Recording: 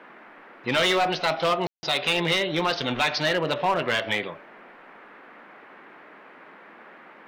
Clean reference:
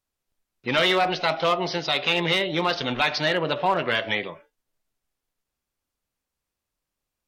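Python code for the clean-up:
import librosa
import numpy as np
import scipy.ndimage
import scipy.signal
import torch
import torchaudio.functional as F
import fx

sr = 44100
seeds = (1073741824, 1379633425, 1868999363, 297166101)

y = fx.fix_declip(x, sr, threshold_db=-16.5)
y = fx.fix_ambience(y, sr, seeds[0], print_start_s=5.91, print_end_s=6.41, start_s=1.67, end_s=1.83)
y = fx.noise_reduce(y, sr, print_start_s=5.91, print_end_s=6.41, reduce_db=30.0)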